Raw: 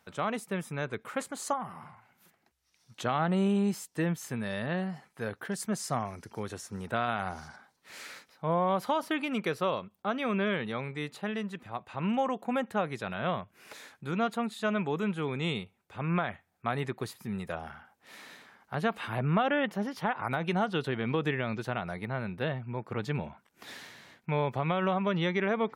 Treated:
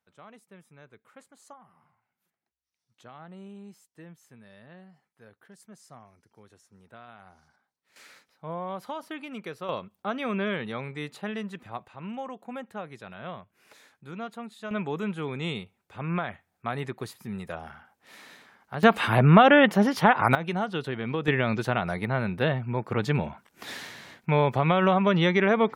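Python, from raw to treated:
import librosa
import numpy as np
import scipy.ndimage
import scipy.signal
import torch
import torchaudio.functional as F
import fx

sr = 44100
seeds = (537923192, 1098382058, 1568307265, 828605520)

y = fx.gain(x, sr, db=fx.steps((0.0, -18.0), (7.96, -7.0), (9.69, 0.5), (11.88, -7.5), (14.71, 0.0), (18.83, 11.5), (20.35, 0.0), (21.28, 7.0)))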